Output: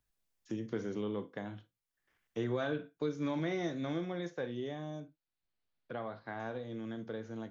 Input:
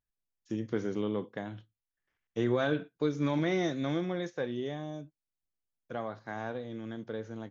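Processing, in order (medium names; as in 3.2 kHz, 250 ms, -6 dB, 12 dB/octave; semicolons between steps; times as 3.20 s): 5.00–6.40 s: Chebyshev low-pass 4.5 kHz, order 4; reverberation, pre-delay 8 ms, DRR 12 dB; three bands compressed up and down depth 40%; trim -5 dB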